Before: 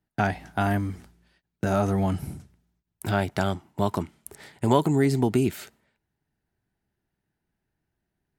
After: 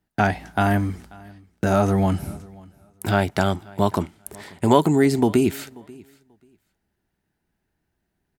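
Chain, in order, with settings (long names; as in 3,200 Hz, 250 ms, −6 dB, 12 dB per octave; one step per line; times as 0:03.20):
parametric band 130 Hz −8.5 dB 0.23 octaves
repeating echo 537 ms, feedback 18%, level −24 dB
level +5 dB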